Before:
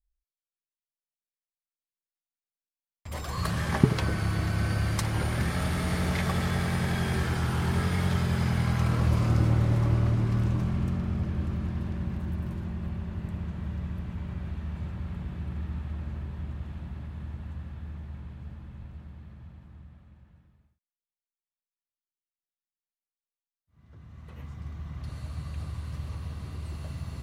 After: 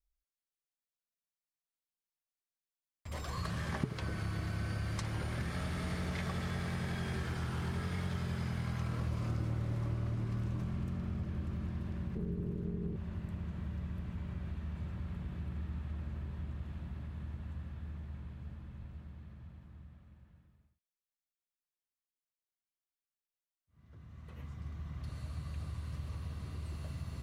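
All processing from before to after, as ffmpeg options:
ffmpeg -i in.wav -filter_complex "[0:a]asettb=1/sr,asplit=3[link_01][link_02][link_03];[link_01]atrim=end=12.154[link_04];[link_02]atrim=start=12.15:end=12.96,asetpts=PTS-STARTPTS,afade=type=in:duration=0.004:curve=qsin,afade=type=out:start_time=0.806:duration=0.004:curve=qsin,equalizer=frequency=180:width=0.93:gain=13.5,tremolo=f=230:d=0.824[link_05];[link_03]atrim=start=12.956[link_06];[link_04][link_05]acrossfade=duration=0.004:curve1=hsin:curve2=qsin[link_07];[link_07][link_06]acrossfade=duration=0.004:curve1=qsin:curve2=hsin,acrossover=split=8600[link_08][link_09];[link_09]acompressor=threshold=-56dB:ratio=4:attack=1:release=60[link_10];[link_08][link_10]amix=inputs=2:normalize=0,equalizer=frequency=830:width_type=o:width=0.28:gain=-3,acompressor=threshold=-31dB:ratio=2.5,volume=-4.5dB" out.wav

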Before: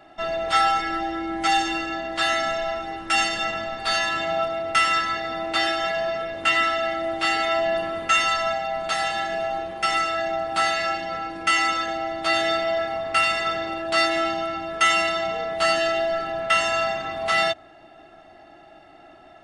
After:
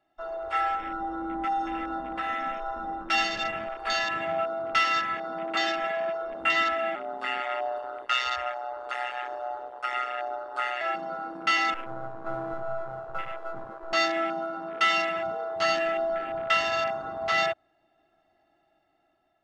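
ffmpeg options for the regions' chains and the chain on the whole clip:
ffmpeg -i in.wav -filter_complex "[0:a]asettb=1/sr,asplit=3[link_01][link_02][link_03];[link_01]atrim=end=0.754[link_04];[link_02]atrim=start=0.75:end=3.09,asetpts=PTS-STARTPTS,afade=type=in:duration=0.004:curve=qsin,afade=type=out:start_time=2.336:duration=0.004:curve=qsin,highshelf=frequency=4000:gain=-9,acompressor=threshold=-24dB:ratio=3:attack=3.2:release=140:knee=1:detection=peak,aecho=1:1:3.9:0.65,atrim=end_sample=103194[link_05];[link_03]atrim=start=3.086[link_06];[link_04][link_05]acrossfade=duration=0.004:curve1=hsin:curve2=qsin[link_07];[link_07][link_06]acrossfade=duration=0.004:curve1=qsin:curve2=hsin,asettb=1/sr,asplit=3[link_08][link_09][link_10];[link_08]atrim=end=6.954[link_11];[link_09]atrim=start=6.95:end=10.81,asetpts=PTS-STARTPTS,afade=type=in:duration=0.004:curve=qsin,afade=type=out:start_time=3.856:duration=0.004:curve=qsin,equalizer=frequency=140:width_type=o:width=2.5:gain=-7.5,aeval=exprs='val(0)*sin(2*PI*63*n/s)':channel_layout=same[link_12];[link_10]atrim=start=10.806[link_13];[link_11][link_12]acrossfade=duration=0.004:curve1=hsin:curve2=qsin[link_14];[link_14][link_13]acrossfade=duration=0.004:curve1=qsin:curve2=hsin,asettb=1/sr,asplit=3[link_15][link_16][link_17];[link_15]atrim=end=11.744[link_18];[link_16]atrim=start=11.74:end=13.93,asetpts=PTS-STARTPTS,afade=type=in:duration=0.004:curve=qsin,afade=type=out:start_time=2.186:duration=0.004:curve=qsin,lowpass=frequency=1400:width=0.5412,lowpass=frequency=1400:width=1.3066,aeval=exprs='max(val(0),0)':channel_layout=same[link_19];[link_17]atrim=start=13.926[link_20];[link_18][link_19]acrossfade=duration=0.004:curve1=hsin:curve2=qsin[link_21];[link_21][link_20]acrossfade=duration=0.004:curve1=qsin:curve2=hsin,dynaudnorm=framelen=480:gausssize=5:maxgain=4.5dB,afwtdn=0.0562,volume=-7.5dB" out.wav

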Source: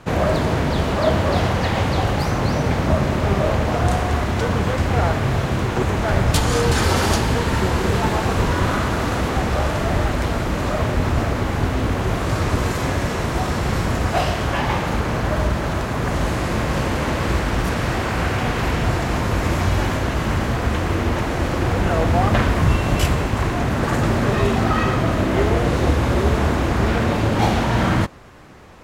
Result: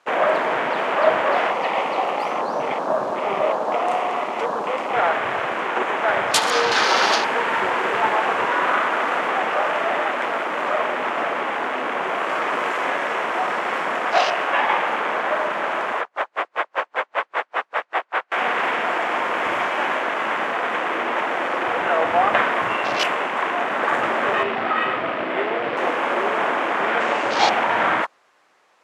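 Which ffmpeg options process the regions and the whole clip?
ffmpeg -i in.wav -filter_complex "[0:a]asettb=1/sr,asplit=3[link_01][link_02][link_03];[link_01]atrim=end=1.504[link_04];[link_02]atrim=start=1.5:end=4.95,asetpts=PTS-STARTPTS,afade=type=in:duration=0.004:curve=qsin,afade=type=out:start_time=3.446:duration=0.004:curve=qsin,highpass=frequency=120:width=0.5412,highpass=frequency=120:width=1.3066,equalizer=frequency=1600:width=4.7:gain=-14.5[link_05];[link_03]atrim=start=4.946[link_06];[link_04][link_05]acrossfade=duration=0.004:curve1=hsin:curve2=qsin[link_07];[link_07][link_06]acrossfade=duration=0.004:curve1=qsin:curve2=hsin,asettb=1/sr,asplit=3[link_08][link_09][link_10];[link_08]atrim=end=16.014[link_11];[link_09]atrim=start=16.01:end=18.32,asetpts=PTS-STARTPTS,afade=type=in:duration=0.004:curve=qsin,afade=type=out:start_time=2.306:duration=0.004:curve=qsin,asplit=2[link_12][link_13];[link_13]highpass=frequency=720:poles=1,volume=13dB,asoftclip=type=tanh:threshold=-7.5dB[link_14];[link_12][link_14]amix=inputs=2:normalize=0,lowpass=frequency=1500:poles=1,volume=-6dB,aeval=exprs='val(0)*pow(10,-38*(0.5-0.5*cos(2*PI*5.1*n/s))/20)':channel_layout=same[link_15];[link_10]atrim=start=18.316[link_16];[link_11][link_15]acrossfade=duration=0.004:curve1=hsin:curve2=qsin[link_17];[link_17][link_16]acrossfade=duration=0.004:curve1=qsin:curve2=hsin,asettb=1/sr,asplit=3[link_18][link_19][link_20];[link_18]atrim=end=24.434[link_21];[link_19]atrim=start=24.43:end=25.77,asetpts=PTS-STARTPTS,afade=type=in:duration=0.004:curve=qsin,afade=type=out:start_time=1.336:duration=0.004:curve=qsin,lowpass=frequency=4700:width=0.5412,lowpass=frequency=4700:width=1.3066,equalizer=frequency=1000:width=0.68:gain=-4.5[link_22];[link_20]atrim=start=25.766[link_23];[link_21][link_22]acrossfade=duration=0.004:curve1=hsin:curve2=qsin[link_24];[link_24][link_23]acrossfade=duration=0.004:curve1=qsin:curve2=hsin,asettb=1/sr,asplit=3[link_25][link_26][link_27];[link_25]atrim=end=27.004[link_28];[link_26]atrim=start=27:end=27.5,asetpts=PTS-STARTPTS,afade=type=in:duration=0.004:curve=qsin,afade=type=out:start_time=0.496:duration=0.004:curve=qsin,lowpass=frequency=8400:width=0.5412,lowpass=frequency=8400:width=1.3066,bass=frequency=250:gain=-1,treble=frequency=4000:gain=9[link_29];[link_27]atrim=start=27.496[link_30];[link_28][link_29]acrossfade=duration=0.004:curve1=hsin:curve2=qsin[link_31];[link_31][link_30]acrossfade=duration=0.004:curve1=qsin:curve2=hsin,highpass=660,afwtdn=0.0282,lowpass=11000,volume=5.5dB" out.wav

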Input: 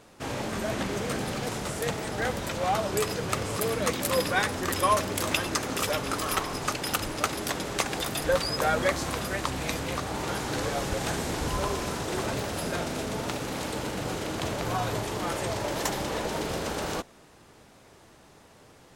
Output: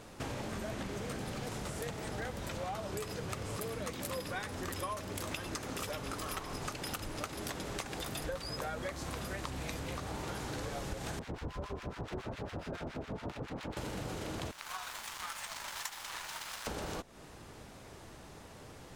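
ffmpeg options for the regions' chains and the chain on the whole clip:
ffmpeg -i in.wav -filter_complex "[0:a]asettb=1/sr,asplit=3[link_01][link_02][link_03];[link_01]atrim=end=11.194[link_04];[link_02]atrim=start=11.19:end=13.77,asetpts=PTS-STARTPTS,afade=type=in:duration=0.004:curve=qsin,afade=type=out:start_time=2.576:duration=0.004:curve=qsin,adynamicsmooth=sensitivity=6:basefreq=1600,acrossover=split=1100[link_05][link_06];[link_05]aeval=exprs='val(0)*(1-1/2+1/2*cos(2*PI*7.2*n/s))':channel_layout=same[link_07];[link_06]aeval=exprs='val(0)*(1-1/2-1/2*cos(2*PI*7.2*n/s))':channel_layout=same[link_08];[link_07][link_08]amix=inputs=2:normalize=0[link_09];[link_03]atrim=start=13.766[link_10];[link_04][link_09]acrossfade=duration=0.004:curve1=hsin:curve2=qsin[link_11];[link_11][link_10]acrossfade=duration=0.004:curve1=qsin:curve2=hsin,asettb=1/sr,asplit=3[link_12][link_13][link_14];[link_12]atrim=end=14.514[link_15];[link_13]atrim=start=14.51:end=16.67,asetpts=PTS-STARTPTS,afade=type=in:duration=0.004:curve=qsin,afade=type=out:start_time=2.156:duration=0.004:curve=qsin,highpass=frequency=1000:width=0.5412,highpass=frequency=1000:width=1.3066,aeval=exprs='sgn(val(0))*max(abs(val(0))-0.00891,0)':channel_layout=same[link_16];[link_14]atrim=start=16.666[link_17];[link_15][link_16]acrossfade=duration=0.004:curve1=hsin:curve2=qsin[link_18];[link_18][link_17]acrossfade=duration=0.004:curve1=qsin:curve2=hsin,lowshelf=frequency=110:gain=7.5,acompressor=threshold=-39dB:ratio=6,volume=1.5dB" out.wav

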